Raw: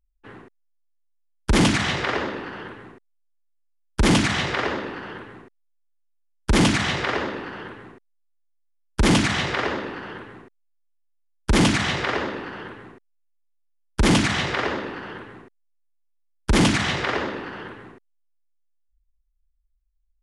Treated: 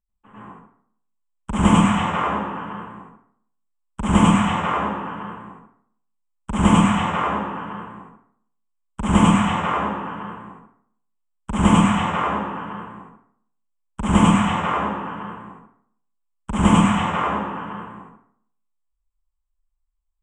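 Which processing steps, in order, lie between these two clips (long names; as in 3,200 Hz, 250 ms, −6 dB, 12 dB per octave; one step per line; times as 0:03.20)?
drawn EQ curve 130 Hz 0 dB, 200 Hz +12 dB, 350 Hz −5 dB, 1,100 Hz +12 dB, 1,700 Hz −4 dB, 3,100 Hz +2 dB, 4,400 Hz −26 dB, 8,000 Hz +8 dB, 12,000 Hz −22 dB
dense smooth reverb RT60 0.62 s, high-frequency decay 0.65×, pre-delay 85 ms, DRR −9.5 dB
level −11.5 dB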